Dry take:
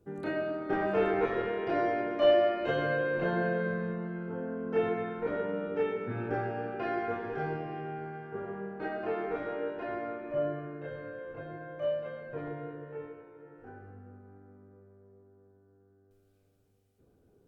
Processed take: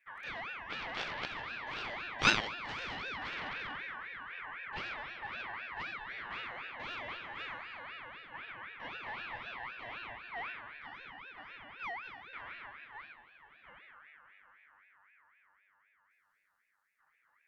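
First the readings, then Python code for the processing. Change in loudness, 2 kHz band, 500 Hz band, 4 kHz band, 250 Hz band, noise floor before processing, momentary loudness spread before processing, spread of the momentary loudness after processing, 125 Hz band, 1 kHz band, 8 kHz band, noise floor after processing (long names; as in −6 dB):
−7.0 dB, +1.0 dB, −21.5 dB, +5.5 dB, −16.0 dB, −67 dBFS, 15 LU, 11 LU, −13.5 dB, −5.5 dB, can't be measured, −75 dBFS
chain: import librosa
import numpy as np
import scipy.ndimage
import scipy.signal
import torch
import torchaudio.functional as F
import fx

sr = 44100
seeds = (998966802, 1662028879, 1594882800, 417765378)

y = fx.cheby_harmonics(x, sr, harmonics=(3,), levels_db=(-7,), full_scale_db=-14.0)
y = fx.ring_lfo(y, sr, carrier_hz=1700.0, swing_pct=25, hz=3.9)
y = F.gain(torch.from_numpy(y), 4.5).numpy()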